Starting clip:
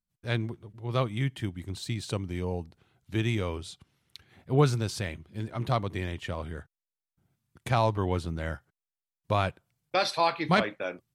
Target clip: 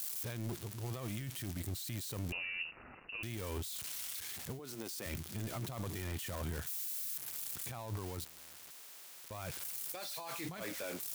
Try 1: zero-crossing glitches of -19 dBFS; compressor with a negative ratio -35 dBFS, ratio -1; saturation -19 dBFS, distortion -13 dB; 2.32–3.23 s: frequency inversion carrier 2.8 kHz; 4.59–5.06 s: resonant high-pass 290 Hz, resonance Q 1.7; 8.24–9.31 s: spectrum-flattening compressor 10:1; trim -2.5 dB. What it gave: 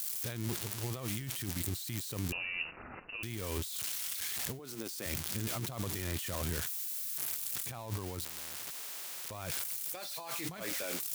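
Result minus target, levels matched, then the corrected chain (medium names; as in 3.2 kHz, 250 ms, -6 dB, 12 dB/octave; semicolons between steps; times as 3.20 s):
saturation: distortion -8 dB
zero-crossing glitches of -19 dBFS; compressor with a negative ratio -35 dBFS, ratio -1; saturation -31 dBFS, distortion -5 dB; 2.32–3.23 s: frequency inversion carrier 2.8 kHz; 4.59–5.06 s: resonant high-pass 290 Hz, resonance Q 1.7; 8.24–9.31 s: spectrum-flattening compressor 10:1; trim -2.5 dB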